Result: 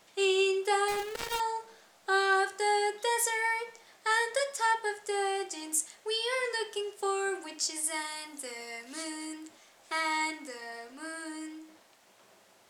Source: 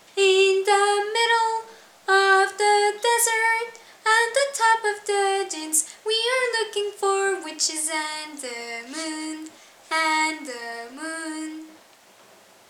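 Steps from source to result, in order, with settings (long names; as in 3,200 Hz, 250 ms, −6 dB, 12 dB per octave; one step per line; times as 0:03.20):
0:00.88–0:01.40: gap after every zero crossing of 0.26 ms
0:07.83–0:09.34: parametric band 11,000 Hz +7.5 dB 0.54 octaves
level −9 dB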